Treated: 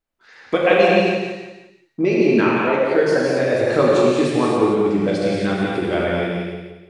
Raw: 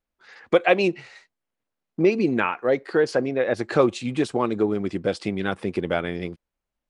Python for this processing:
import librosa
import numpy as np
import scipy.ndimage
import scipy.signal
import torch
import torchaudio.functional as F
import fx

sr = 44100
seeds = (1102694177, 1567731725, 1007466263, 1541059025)

y = fx.echo_feedback(x, sr, ms=174, feedback_pct=35, wet_db=-6.0)
y = fx.rev_gated(y, sr, seeds[0], gate_ms=300, shape='flat', drr_db=-4.5)
y = y * librosa.db_to_amplitude(-1.0)